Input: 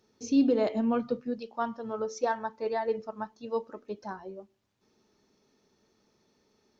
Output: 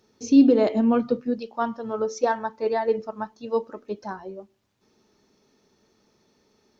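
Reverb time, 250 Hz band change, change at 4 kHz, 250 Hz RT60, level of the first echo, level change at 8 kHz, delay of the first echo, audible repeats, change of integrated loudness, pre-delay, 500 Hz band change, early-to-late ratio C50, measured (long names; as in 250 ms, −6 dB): no reverb audible, +8.0 dB, +5.0 dB, no reverb audible, no echo audible, can't be measured, no echo audible, no echo audible, +7.5 dB, no reverb audible, +6.5 dB, no reverb audible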